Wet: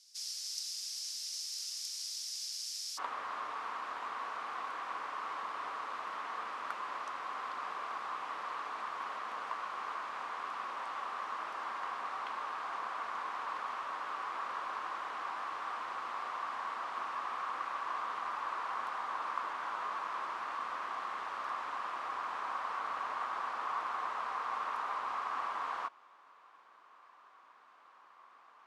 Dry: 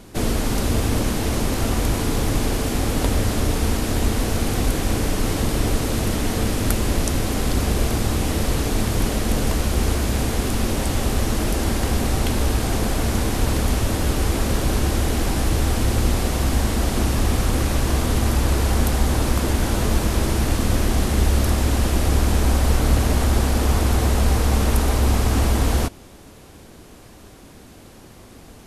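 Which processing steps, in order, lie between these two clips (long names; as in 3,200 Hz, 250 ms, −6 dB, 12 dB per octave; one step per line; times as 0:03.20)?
four-pole ladder band-pass 5,600 Hz, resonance 70%, from 0:02.97 1,200 Hz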